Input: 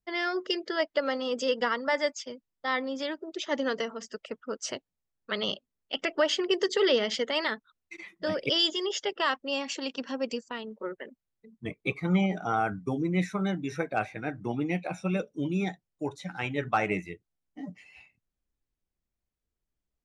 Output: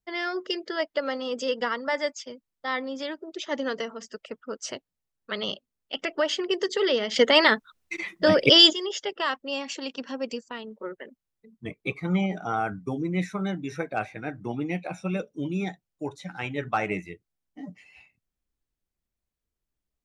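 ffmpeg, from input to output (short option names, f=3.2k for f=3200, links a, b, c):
-filter_complex "[0:a]asplit=3[a][b][c];[a]atrim=end=7.162[d];[b]atrim=start=7.158:end=8.732,asetpts=PTS-STARTPTS,volume=11dB[e];[c]atrim=start=8.728[f];[d][e]acrossfade=d=0.004:c1=hsin:c2=hsin[g];[g][f]acrossfade=d=0.004:c1=hsin:c2=hsin"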